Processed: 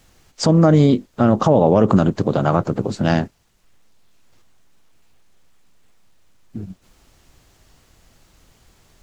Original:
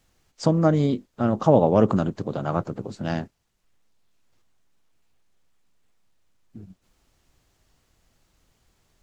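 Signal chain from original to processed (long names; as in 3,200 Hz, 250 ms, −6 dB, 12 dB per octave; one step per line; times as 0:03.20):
in parallel at −3 dB: downward compressor, threshold −27 dBFS, peak gain reduction 15.5 dB
on the sum: boost into a limiter +9 dB
level −2 dB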